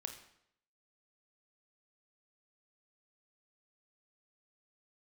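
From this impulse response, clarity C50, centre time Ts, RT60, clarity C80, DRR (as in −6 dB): 8.5 dB, 17 ms, 0.70 s, 11.5 dB, 5.0 dB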